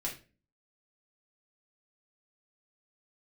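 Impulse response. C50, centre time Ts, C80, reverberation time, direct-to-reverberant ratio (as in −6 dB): 9.0 dB, 21 ms, 15.5 dB, 0.35 s, −3.5 dB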